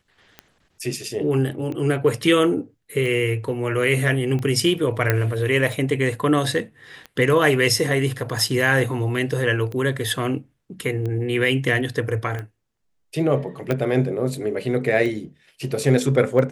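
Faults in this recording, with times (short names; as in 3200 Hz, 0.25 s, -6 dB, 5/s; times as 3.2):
tick 45 rpm -19 dBFS
5.1 pop -5 dBFS
13.71 pop -10 dBFS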